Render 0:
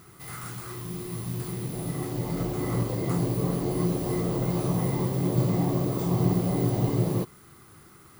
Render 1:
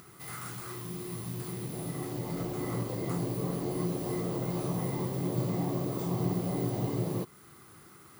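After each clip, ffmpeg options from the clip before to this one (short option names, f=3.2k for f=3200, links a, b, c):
-filter_complex "[0:a]asplit=2[a][b];[b]acompressor=threshold=-34dB:ratio=6,volume=-2dB[c];[a][c]amix=inputs=2:normalize=0,highpass=f=120:p=1,acompressor=mode=upward:threshold=-45dB:ratio=2.5,volume=-6.5dB"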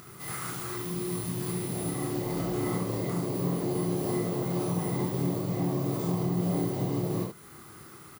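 -filter_complex "[0:a]alimiter=level_in=1.5dB:limit=-24dB:level=0:latency=1:release=288,volume=-1.5dB,asplit=2[a][b];[b]aecho=0:1:28|73:0.668|0.596[c];[a][c]amix=inputs=2:normalize=0,volume=3dB"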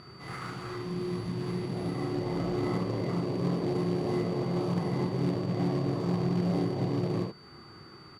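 -af "acrusher=bits=3:mode=log:mix=0:aa=0.000001,aeval=exprs='val(0)+0.00708*sin(2*PI*4600*n/s)':c=same,adynamicsmooth=sensitivity=4:basefreq=2.5k"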